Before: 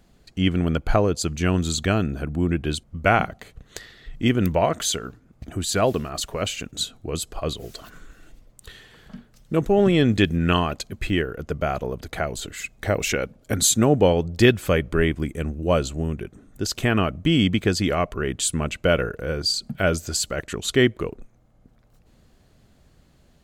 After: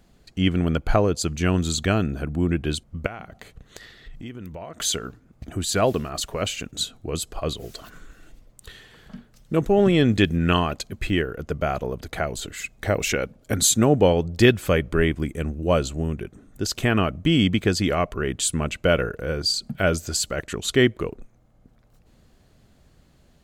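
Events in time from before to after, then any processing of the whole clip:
0:03.06–0:04.80: downward compressor 4 to 1, threshold −36 dBFS

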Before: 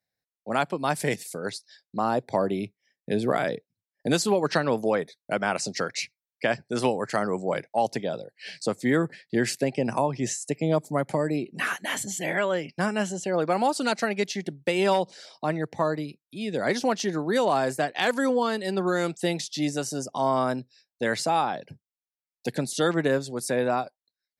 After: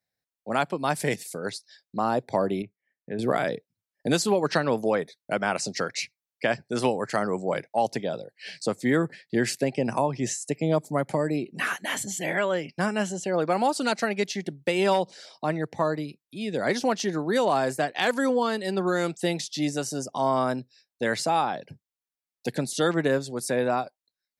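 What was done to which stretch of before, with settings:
0:02.62–0:03.19: transistor ladder low-pass 2,300 Hz, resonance 30%

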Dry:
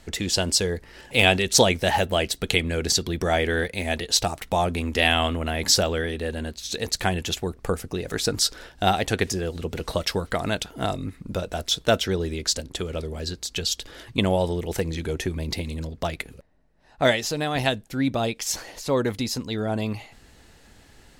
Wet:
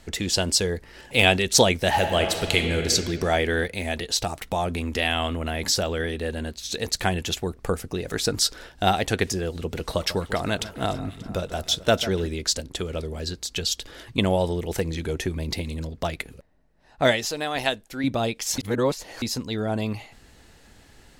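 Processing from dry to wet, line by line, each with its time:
0:01.88–0:02.91: thrown reverb, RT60 2 s, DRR 4 dB
0:03.67–0:06.00: downward compressor 1.5 to 1, threshold −25 dBFS
0:09.85–0:12.27: delay that swaps between a low-pass and a high-pass 146 ms, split 2,000 Hz, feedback 76%, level −14 dB
0:17.25–0:18.04: parametric band 120 Hz −11.5 dB 2.1 octaves
0:18.58–0:19.22: reverse

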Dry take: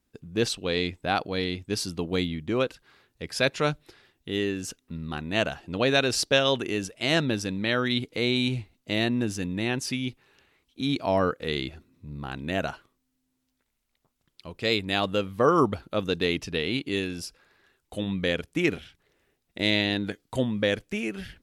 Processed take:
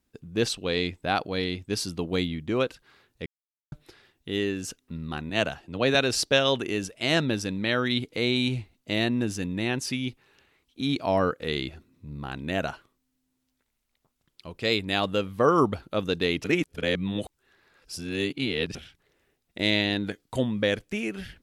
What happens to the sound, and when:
0:03.26–0:03.72: silence
0:05.30–0:05.95: multiband upward and downward expander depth 40%
0:16.44–0:18.75: reverse

